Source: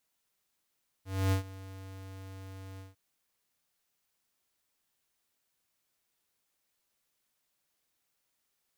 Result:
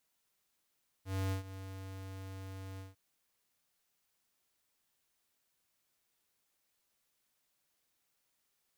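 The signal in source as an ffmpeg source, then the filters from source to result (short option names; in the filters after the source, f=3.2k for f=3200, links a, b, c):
-f lavfi -i "aevalsrc='0.0501*(2*lt(mod(95.7*t,1),0.5)-1)':d=1.902:s=44100,afade=t=in:d=0.268,afade=t=out:st=0.268:d=0.11:silence=0.106,afade=t=out:st=1.74:d=0.162"
-af "acompressor=threshold=-36dB:ratio=6"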